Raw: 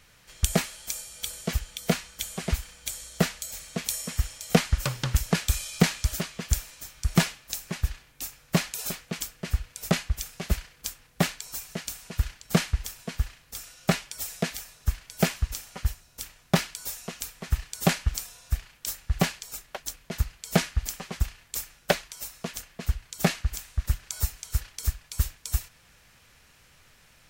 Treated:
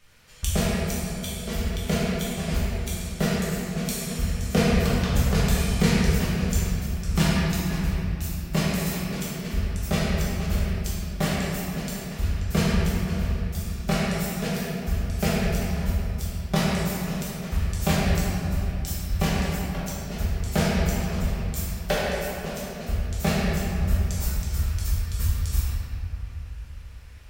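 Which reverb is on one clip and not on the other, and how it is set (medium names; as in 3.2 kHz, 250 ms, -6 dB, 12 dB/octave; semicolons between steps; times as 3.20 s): simulated room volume 140 m³, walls hard, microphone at 1.2 m; trim -6.5 dB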